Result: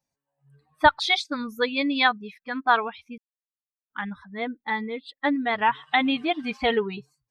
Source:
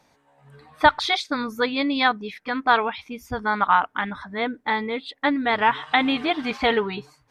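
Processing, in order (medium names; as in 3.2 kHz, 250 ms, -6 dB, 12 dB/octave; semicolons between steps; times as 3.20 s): expander on every frequency bin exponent 1.5; 0.96–2.67 s: dynamic bell 2.6 kHz, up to +4 dB, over -37 dBFS, Q 1.3; 3.18–3.90 s: mute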